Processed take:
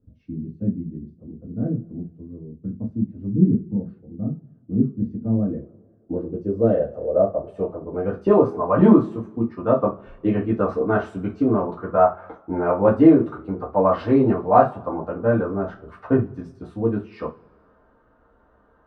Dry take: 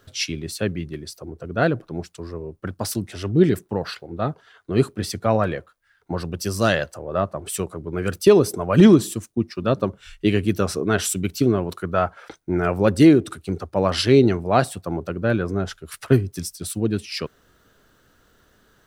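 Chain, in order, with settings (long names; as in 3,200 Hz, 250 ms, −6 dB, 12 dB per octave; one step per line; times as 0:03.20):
coupled-rooms reverb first 0.23 s, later 1.5 s, from −27 dB, DRR −5.5 dB
low-pass filter sweep 210 Hz → 980 Hz, 0:04.95–0:08.54
level −6.5 dB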